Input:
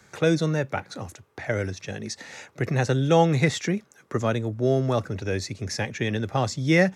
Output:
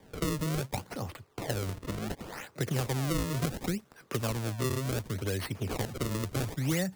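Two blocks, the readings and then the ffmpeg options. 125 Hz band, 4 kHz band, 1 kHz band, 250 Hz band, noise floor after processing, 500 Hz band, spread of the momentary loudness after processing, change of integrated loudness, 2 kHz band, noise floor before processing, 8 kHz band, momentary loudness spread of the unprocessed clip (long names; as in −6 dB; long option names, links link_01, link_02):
−6.5 dB, −5.5 dB, −10.0 dB, −8.0 dB, −58 dBFS, −11.5 dB, 8 LU, −8.5 dB, −11.0 dB, −57 dBFS, −2.5 dB, 15 LU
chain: -filter_complex "[0:a]acrusher=samples=32:mix=1:aa=0.000001:lfo=1:lforange=51.2:lforate=0.69,acrossover=split=160|4700[link_01][link_02][link_03];[link_01]acompressor=threshold=-34dB:ratio=4[link_04];[link_02]acompressor=threshold=-33dB:ratio=4[link_05];[link_03]acompressor=threshold=-37dB:ratio=4[link_06];[link_04][link_05][link_06]amix=inputs=3:normalize=0"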